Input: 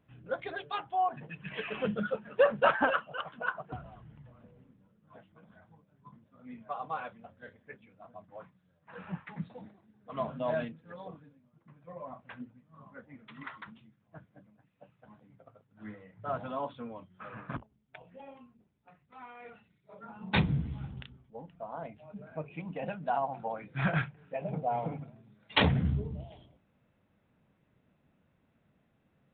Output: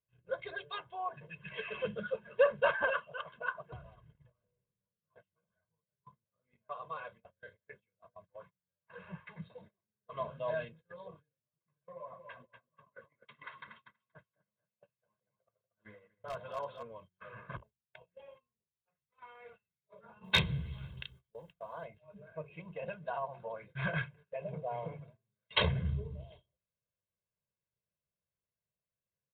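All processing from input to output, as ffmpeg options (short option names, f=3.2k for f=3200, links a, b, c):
-filter_complex "[0:a]asettb=1/sr,asplit=3[a][b][c];[a]atrim=end=11.834[d];[b]atrim=start=11.83:end=16.83,asetpts=PTS-STARTPTS,afade=t=in:d=0.004:c=qsin,afade=t=out:st=4.996:d=0.004:c=qsin,lowshelf=f=160:g=-7,aeval=exprs='0.0447*(abs(mod(val(0)/0.0447+3,4)-2)-1)':c=same,aecho=1:1:238|476|714|952:0.422|0.16|0.0609|0.0231,atrim=end_sample=220500[e];[c]atrim=start=16.826[f];[d][e]acrossfade=d=0.004:c1=hsin:c2=qsin[g];[g][f]acrossfade=d=0.004:c1=qsin:c2=hsin,asettb=1/sr,asplit=3[h][i][j];[h]atrim=end=20.244[k];[i]atrim=start=20.24:end=21.85,asetpts=PTS-STARTPTS,afade=t=in:d=0.004:c=qsin,afade=t=out:st=1.606:d=0.004:c=qsin,highshelf=f=2.1k:g=12,volume=13dB,asoftclip=hard,volume=-13dB[l];[j]atrim=start=21.846[m];[k][l]acrossfade=d=0.004:c1=hsin:c2=qsin[n];[n][m]acrossfade=d=0.004:c1=qsin:c2=hsin,highshelf=f=3k:g=6,aecho=1:1:1.9:0.92,agate=range=-21dB:threshold=-48dB:ratio=16:detection=peak,volume=-8dB"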